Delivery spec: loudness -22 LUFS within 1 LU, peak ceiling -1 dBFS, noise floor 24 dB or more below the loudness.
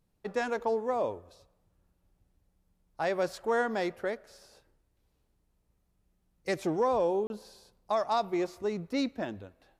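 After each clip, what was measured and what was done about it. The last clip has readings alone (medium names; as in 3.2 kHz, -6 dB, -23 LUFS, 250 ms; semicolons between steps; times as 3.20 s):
dropouts 1; longest dropout 31 ms; loudness -31.5 LUFS; peak level -18.0 dBFS; loudness target -22.0 LUFS
-> interpolate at 7.27 s, 31 ms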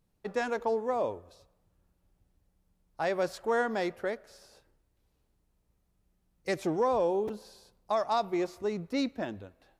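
dropouts 0; loudness -31.5 LUFS; peak level -18.0 dBFS; loudness target -22.0 LUFS
-> trim +9.5 dB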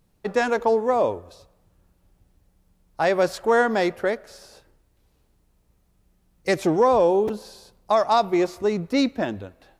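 loudness -22.0 LUFS; peak level -8.5 dBFS; noise floor -65 dBFS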